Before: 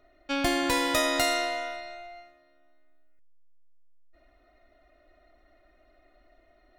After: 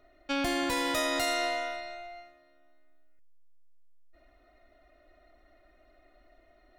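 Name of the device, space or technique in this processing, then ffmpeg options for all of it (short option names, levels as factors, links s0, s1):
soft clipper into limiter: -af "asoftclip=type=tanh:threshold=0.158,alimiter=limit=0.0841:level=0:latency=1:release=107"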